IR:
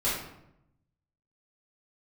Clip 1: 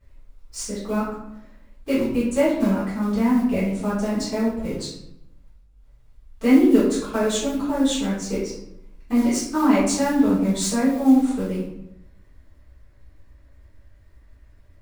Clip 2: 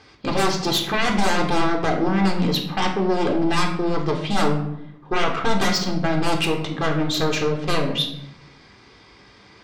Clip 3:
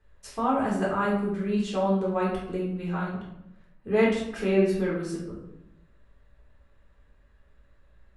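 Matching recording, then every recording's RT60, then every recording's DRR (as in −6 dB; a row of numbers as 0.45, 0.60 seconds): 1; 0.80, 0.80, 0.80 seconds; −11.0, 2.0, −5.0 decibels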